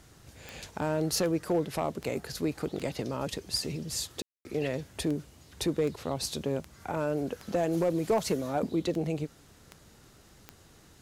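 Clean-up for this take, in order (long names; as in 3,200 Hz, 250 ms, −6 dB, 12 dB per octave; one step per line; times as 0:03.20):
clipped peaks rebuilt −19.5 dBFS
click removal
ambience match 0:04.22–0:04.45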